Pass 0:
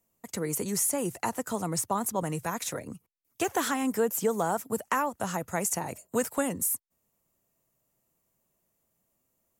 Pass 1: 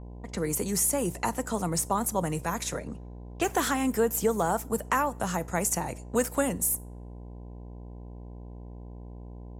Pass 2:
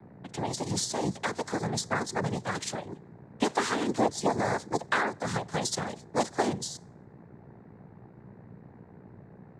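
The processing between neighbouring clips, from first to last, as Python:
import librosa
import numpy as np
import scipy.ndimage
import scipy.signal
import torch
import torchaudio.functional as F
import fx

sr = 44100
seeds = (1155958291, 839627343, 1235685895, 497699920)

y1 = fx.dmg_buzz(x, sr, base_hz=60.0, harmonics=17, level_db=-43.0, tilt_db=-7, odd_only=False)
y1 = fx.rev_double_slope(y1, sr, seeds[0], early_s=0.33, late_s=1.9, knee_db=-22, drr_db=17.5)
y1 = fx.env_lowpass(y1, sr, base_hz=2300.0, full_db=-27.0)
y1 = F.gain(torch.from_numpy(y1), 1.5).numpy()
y2 = fx.noise_vocoder(y1, sr, seeds[1], bands=6)
y2 = F.gain(torch.from_numpy(y2), -1.0).numpy()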